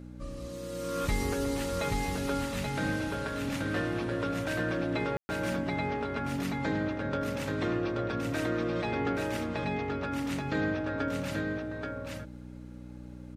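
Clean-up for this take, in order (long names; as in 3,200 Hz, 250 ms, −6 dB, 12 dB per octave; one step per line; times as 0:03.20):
hum removal 61.2 Hz, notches 5
ambience match 0:05.17–0:05.29
downward expander −35 dBFS, range −21 dB
echo removal 830 ms −3.5 dB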